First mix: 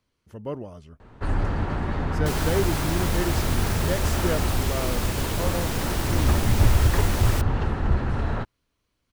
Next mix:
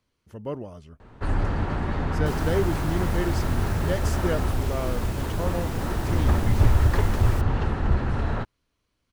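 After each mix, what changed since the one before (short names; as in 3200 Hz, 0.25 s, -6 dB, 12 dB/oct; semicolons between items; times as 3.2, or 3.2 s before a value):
second sound -8.0 dB; reverb: off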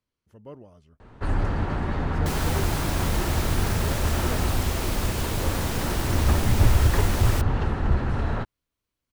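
speech -10.5 dB; second sound +9.0 dB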